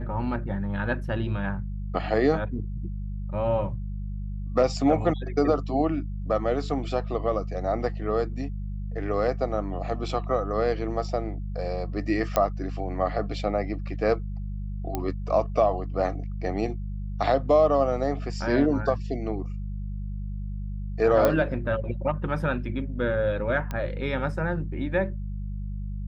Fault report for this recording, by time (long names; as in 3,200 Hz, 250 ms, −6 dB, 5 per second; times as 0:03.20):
mains hum 50 Hz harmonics 4 −32 dBFS
0:12.36: click −9 dBFS
0:14.95: click −14 dBFS
0:21.25: click −9 dBFS
0:23.71: click −18 dBFS